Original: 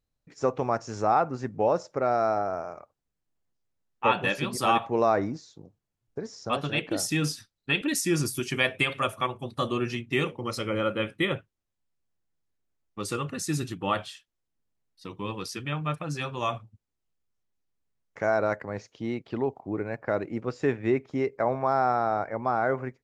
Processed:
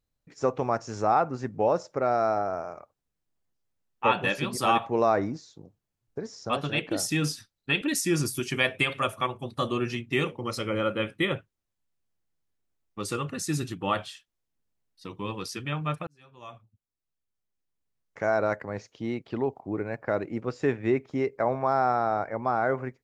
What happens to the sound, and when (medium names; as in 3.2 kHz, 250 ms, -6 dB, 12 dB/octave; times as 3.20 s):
16.07–18.41 s: fade in